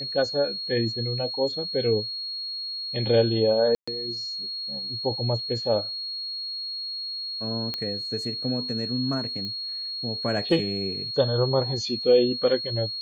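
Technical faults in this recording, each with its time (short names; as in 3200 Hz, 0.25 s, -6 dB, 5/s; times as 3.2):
tone 4300 Hz -30 dBFS
3.75–3.88 gap 0.125 s
7.74 pop -15 dBFS
9.45 pop -22 dBFS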